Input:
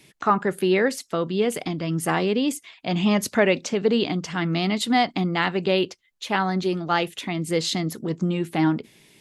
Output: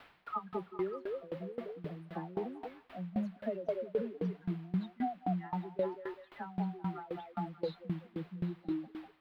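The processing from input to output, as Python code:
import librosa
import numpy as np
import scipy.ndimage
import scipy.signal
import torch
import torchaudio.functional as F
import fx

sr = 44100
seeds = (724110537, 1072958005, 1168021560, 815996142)

y = fx.spec_expand(x, sr, power=2.6)
y = fx.peak_eq(y, sr, hz=120.0, db=-4.5, octaves=1.5)
y = fx.comb_fb(y, sr, f0_hz=180.0, decay_s=0.17, harmonics='odd', damping=0.0, mix_pct=70)
y = fx.dispersion(y, sr, late='lows', ms=105.0, hz=1400.0)
y = fx.quant_dither(y, sr, seeds[0], bits=8, dither='triangular')
y = fx.dmg_noise_band(y, sr, seeds[1], low_hz=730.0, high_hz=5100.0, level_db=-51.0)
y = fx.air_absorb(y, sr, metres=490.0)
y = fx.echo_stepped(y, sr, ms=196, hz=560.0, octaves=0.7, feedback_pct=70, wet_db=-1.0)
y = fx.tremolo_decay(y, sr, direction='decaying', hz=3.8, depth_db=21)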